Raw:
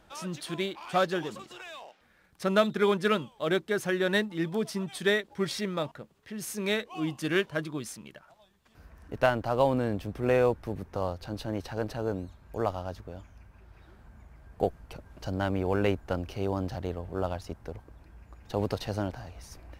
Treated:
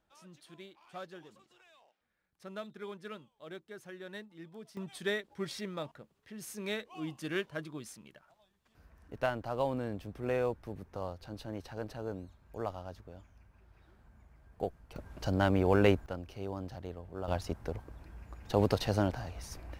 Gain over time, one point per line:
-19 dB
from 4.77 s -8 dB
from 14.96 s +1.5 dB
from 16.06 s -9 dB
from 17.28 s +2 dB

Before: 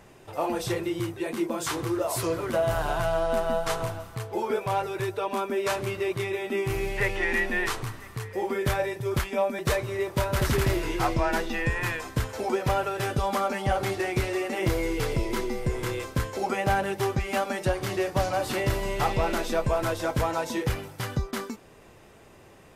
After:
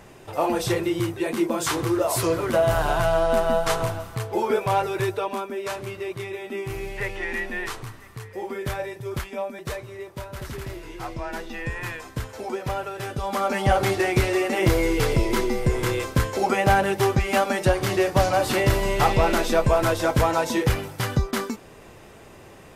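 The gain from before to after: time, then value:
5.1 s +5 dB
5.5 s -3 dB
9.19 s -3 dB
10.32 s -10 dB
10.82 s -10 dB
11.74 s -3 dB
13.18 s -3 dB
13.59 s +6 dB

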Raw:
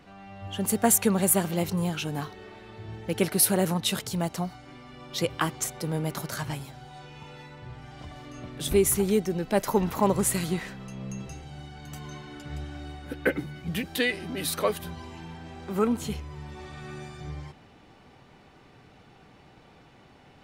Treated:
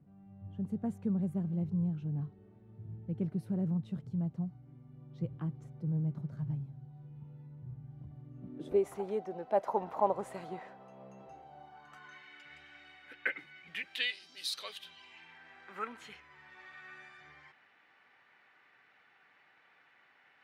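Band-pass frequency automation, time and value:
band-pass, Q 2.6
8.35 s 140 Hz
8.86 s 720 Hz
11.59 s 720 Hz
12.25 s 2100 Hz
13.88 s 2100 Hz
14.29 s 5300 Hz
15.46 s 1800 Hz

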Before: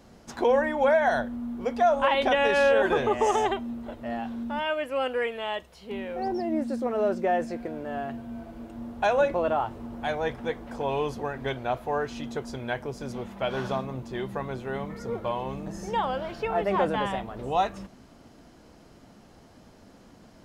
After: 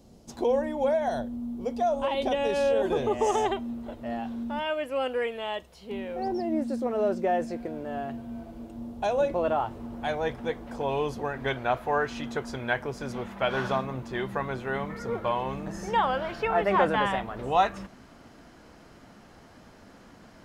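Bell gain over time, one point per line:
bell 1600 Hz 1.6 oct
2.85 s -14 dB
3.39 s -3.5 dB
8.35 s -3.5 dB
9.17 s -12 dB
9.46 s -1.5 dB
11.11 s -1.5 dB
11.58 s +6 dB

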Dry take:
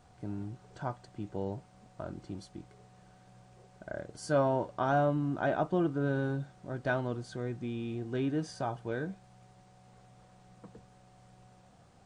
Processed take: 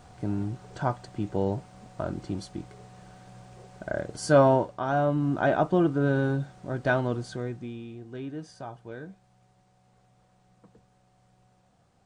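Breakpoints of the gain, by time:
4.53 s +9 dB
4.8 s 0 dB
5.3 s +6.5 dB
7.26 s +6.5 dB
7.94 s -5 dB

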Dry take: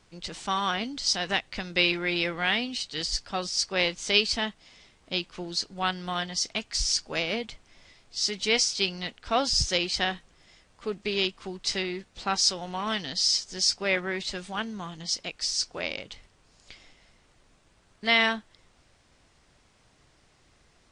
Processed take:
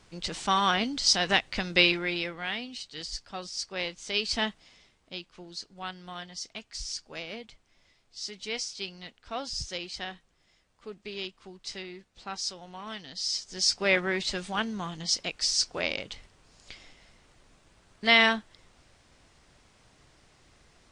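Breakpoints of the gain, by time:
1.77 s +3 dB
2.38 s -7.5 dB
4.15 s -7.5 dB
4.42 s +1 dB
5.17 s -10 dB
13.08 s -10 dB
13.85 s +2 dB

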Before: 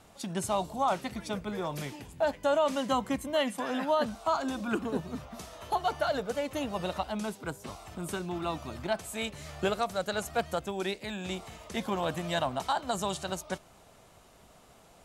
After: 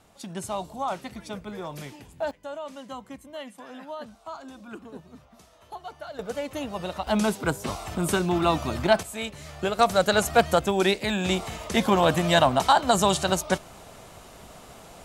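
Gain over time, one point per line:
-1.5 dB
from 2.31 s -10 dB
from 6.19 s +1 dB
from 7.07 s +11 dB
from 9.03 s +2 dB
from 9.79 s +11 dB

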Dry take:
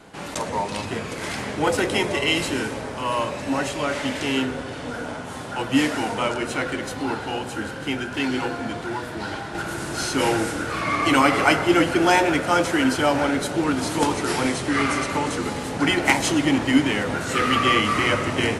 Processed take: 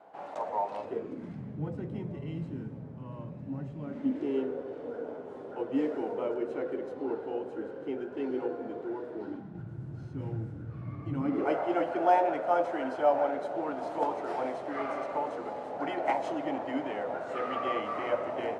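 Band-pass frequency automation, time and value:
band-pass, Q 3.3
0.75 s 720 Hz
1.4 s 150 Hz
3.71 s 150 Hz
4.39 s 430 Hz
9.18 s 430 Hz
9.65 s 120 Hz
11.12 s 120 Hz
11.6 s 660 Hz

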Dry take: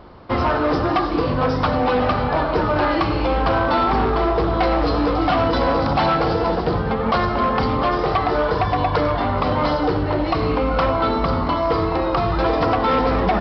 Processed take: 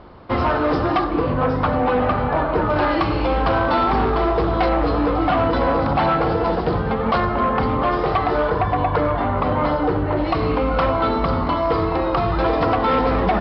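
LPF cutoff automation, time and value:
4600 Hz
from 1.04 s 2500 Hz
from 2.7 s 4800 Hz
from 4.69 s 2900 Hz
from 6.44 s 4100 Hz
from 7.2 s 2700 Hz
from 7.88 s 3800 Hz
from 8.5 s 2400 Hz
from 10.17 s 4200 Hz

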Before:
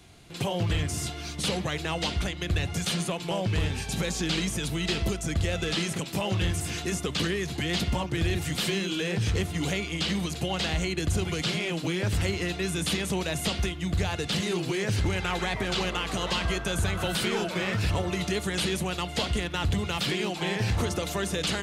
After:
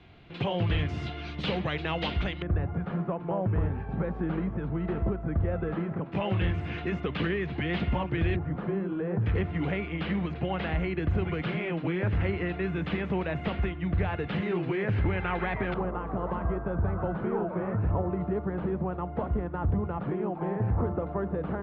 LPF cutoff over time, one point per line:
LPF 24 dB/oct
3200 Hz
from 2.42 s 1400 Hz
from 6.12 s 2500 Hz
from 8.36 s 1300 Hz
from 9.26 s 2200 Hz
from 15.74 s 1200 Hz

